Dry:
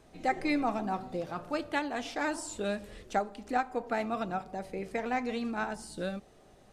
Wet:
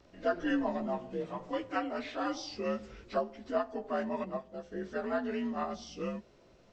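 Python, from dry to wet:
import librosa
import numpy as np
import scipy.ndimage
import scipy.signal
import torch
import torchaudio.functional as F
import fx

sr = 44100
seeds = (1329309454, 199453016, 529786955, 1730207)

y = fx.partial_stretch(x, sr, pct=87)
y = fx.upward_expand(y, sr, threshold_db=-44.0, expansion=1.5, at=(4.24, 4.72))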